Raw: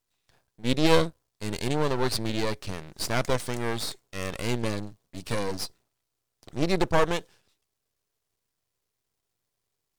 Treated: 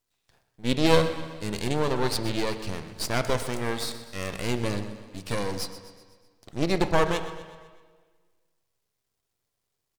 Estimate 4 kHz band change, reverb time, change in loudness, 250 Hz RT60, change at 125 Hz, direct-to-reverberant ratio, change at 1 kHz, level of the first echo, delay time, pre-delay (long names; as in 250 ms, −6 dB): +0.5 dB, 1.5 s, +0.5 dB, 1.6 s, +0.5 dB, 8.5 dB, +0.5 dB, −14.5 dB, 125 ms, 6 ms